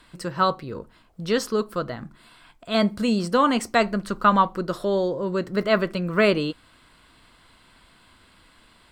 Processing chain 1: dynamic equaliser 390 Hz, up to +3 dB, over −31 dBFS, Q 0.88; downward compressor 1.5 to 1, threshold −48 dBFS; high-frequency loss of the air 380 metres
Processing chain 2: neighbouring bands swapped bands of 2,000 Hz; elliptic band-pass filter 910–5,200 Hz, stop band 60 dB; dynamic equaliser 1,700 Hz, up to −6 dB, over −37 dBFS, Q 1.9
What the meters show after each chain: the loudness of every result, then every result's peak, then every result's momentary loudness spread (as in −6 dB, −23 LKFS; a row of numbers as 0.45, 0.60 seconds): −34.5, −22.5 LKFS; −19.5, −6.5 dBFS; 13, 15 LU